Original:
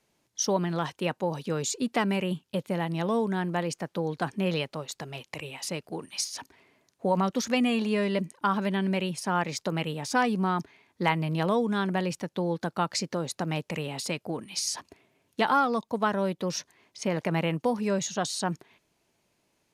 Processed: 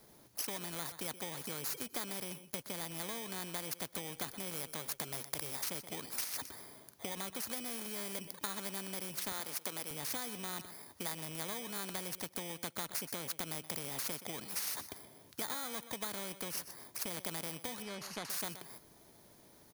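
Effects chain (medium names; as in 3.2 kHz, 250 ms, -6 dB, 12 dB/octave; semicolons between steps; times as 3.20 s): bit-reversed sample order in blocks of 16 samples; 17.82–18.30 s: low-pass 4.1 kHz 12 dB/octave; compression 4:1, threshold -36 dBFS, peak gain reduction 14.5 dB; 9.32–9.91 s: high-pass 330 Hz 12 dB/octave; on a send: feedback delay 125 ms, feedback 16%, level -21.5 dB; on the sum: spectrum-flattening compressor 2:1; trim +3.5 dB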